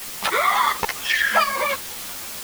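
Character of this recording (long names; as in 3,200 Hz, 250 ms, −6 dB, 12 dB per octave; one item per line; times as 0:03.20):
tremolo saw up 1.4 Hz, depth 60%
a quantiser's noise floor 6 bits, dither triangular
a shimmering, thickened sound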